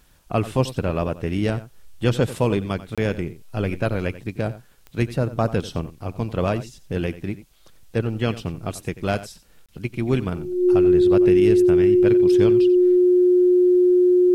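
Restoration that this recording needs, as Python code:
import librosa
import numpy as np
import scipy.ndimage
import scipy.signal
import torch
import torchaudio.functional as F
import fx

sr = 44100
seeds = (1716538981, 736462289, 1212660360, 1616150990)

y = fx.fix_declick_ar(x, sr, threshold=10.0)
y = fx.notch(y, sr, hz=360.0, q=30.0)
y = fx.fix_interpolate(y, sr, at_s=(2.95, 9.66), length_ms=26.0)
y = fx.fix_echo_inverse(y, sr, delay_ms=90, level_db=-15.5)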